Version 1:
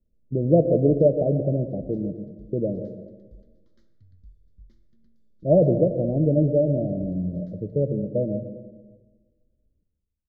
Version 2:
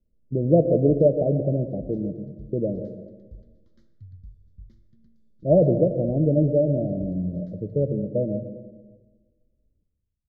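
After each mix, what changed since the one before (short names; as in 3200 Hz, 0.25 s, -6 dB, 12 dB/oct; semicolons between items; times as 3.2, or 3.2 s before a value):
background: add bell 110 Hz +12 dB 1.7 oct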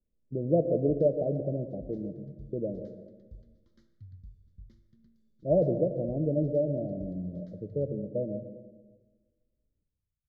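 speech -6.0 dB; master: add low shelf 210 Hz -5 dB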